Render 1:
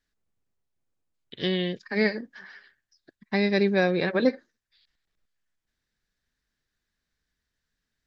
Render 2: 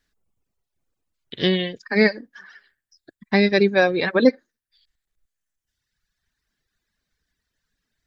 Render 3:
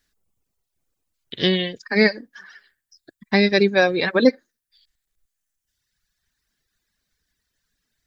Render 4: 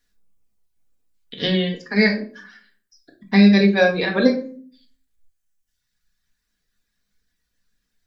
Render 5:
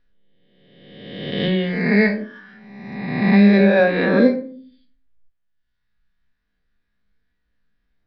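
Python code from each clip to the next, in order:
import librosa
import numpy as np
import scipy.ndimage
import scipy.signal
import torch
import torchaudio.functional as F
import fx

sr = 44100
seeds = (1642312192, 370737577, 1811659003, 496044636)

y1 = fx.dereverb_blind(x, sr, rt60_s=1.7)
y1 = y1 * librosa.db_to_amplitude(7.5)
y2 = fx.high_shelf(y1, sr, hz=4600.0, db=7.5)
y3 = fx.room_shoebox(y2, sr, seeds[0], volume_m3=360.0, walls='furnished', distance_m=1.8)
y3 = y3 * librosa.db_to_amplitude(-3.5)
y4 = fx.spec_swells(y3, sr, rise_s=1.36)
y4 = fx.air_absorb(y4, sr, metres=350.0)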